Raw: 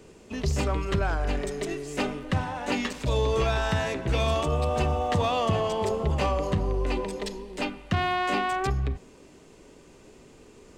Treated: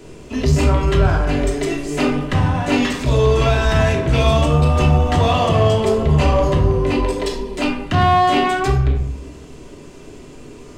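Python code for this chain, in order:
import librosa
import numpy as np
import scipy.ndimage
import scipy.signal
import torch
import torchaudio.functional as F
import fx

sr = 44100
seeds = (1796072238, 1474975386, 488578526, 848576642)

p1 = fx.room_shoebox(x, sr, seeds[0], volume_m3=820.0, walls='furnished', distance_m=3.0)
p2 = 10.0 ** (-27.5 / 20.0) * np.tanh(p1 / 10.0 ** (-27.5 / 20.0))
p3 = p1 + (p2 * librosa.db_to_amplitude(-5.0))
y = p3 * librosa.db_to_amplitude(3.5)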